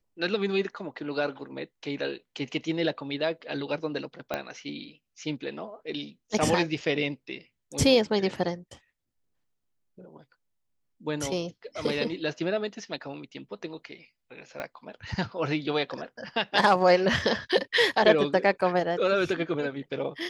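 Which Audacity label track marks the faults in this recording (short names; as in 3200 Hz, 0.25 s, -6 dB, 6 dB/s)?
4.340000	4.340000	pop -15 dBFS
14.600000	14.600000	pop -20 dBFS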